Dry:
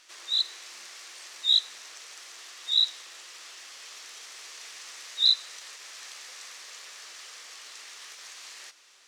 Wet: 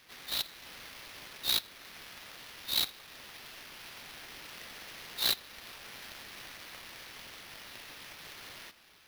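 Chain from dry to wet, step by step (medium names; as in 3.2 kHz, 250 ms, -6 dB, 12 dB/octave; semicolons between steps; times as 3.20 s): high-pass 1.5 kHz 24 dB/octave; in parallel at +1 dB: compression, threshold -39 dBFS, peak gain reduction 20.5 dB; on the sum: sample-rate reducer 7.9 kHz, jitter 20%; trim -9 dB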